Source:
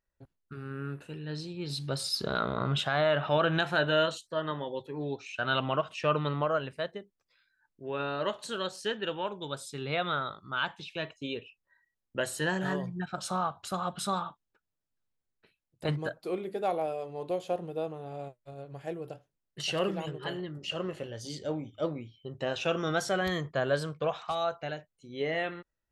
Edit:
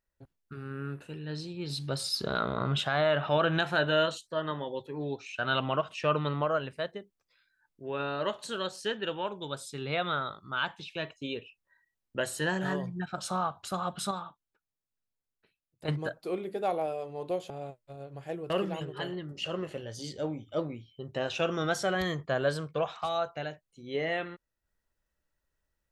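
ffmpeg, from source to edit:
-filter_complex "[0:a]asplit=5[a][b][c][d][e];[a]atrim=end=14.112[f];[b]atrim=start=14.108:end=15.882,asetpts=PTS-STARTPTS,volume=-5.5dB[g];[c]atrim=start=15.878:end=17.502[h];[d]atrim=start=18.078:end=19.082[i];[e]atrim=start=19.758[j];[f][g]acrossfade=d=0.004:c1=hsin:c2=hsin[k];[k][h]acrossfade=d=0.004:c1=hsin:c2=hsin[l];[l][i]acrossfade=d=0.004:c1=hsin:c2=hsin[m];[m][j]acrossfade=d=0.004:c1=hsin:c2=hsin"

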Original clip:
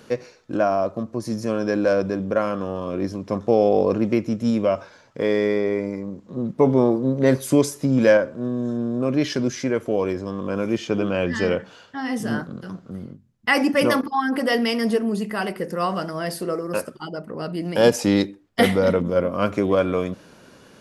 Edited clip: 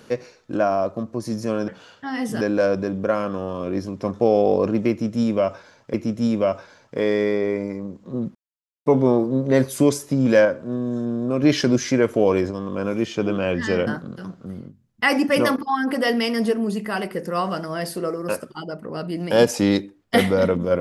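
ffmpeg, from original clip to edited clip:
-filter_complex "[0:a]asplit=8[a][b][c][d][e][f][g][h];[a]atrim=end=1.682[i];[b]atrim=start=11.588:end=12.322[j];[c]atrim=start=1.678:end=5.212[k];[d]atrim=start=4.168:end=6.58,asetpts=PTS-STARTPTS,afade=t=out:st=2.408:d=0.004:c=hsin,apad=pad_dur=0.51[l];[e]atrim=start=6.58:end=9.152,asetpts=PTS-STARTPTS,afade=t=in:d=0.004:c=hsin[m];[f]atrim=start=9.148:end=10.232,asetpts=PTS-STARTPTS,volume=4.5dB[n];[g]atrim=start=10.228:end=11.592[o];[h]atrim=start=12.318[p];[i][j]acrossfade=d=0.004:c1=hsin:c2=hsin[q];[q][k]acrossfade=d=0.004:c1=hsin:c2=hsin[r];[l][m]concat=n=2:v=0:a=1[s];[r][s]acrossfade=d=0.004:c1=hsin:c2=hsin[t];[t][n]acrossfade=d=0.004:c1=hsin:c2=hsin[u];[u][o]acrossfade=d=0.004:c1=hsin:c2=hsin[v];[v][p]acrossfade=d=0.004:c1=hsin:c2=hsin"

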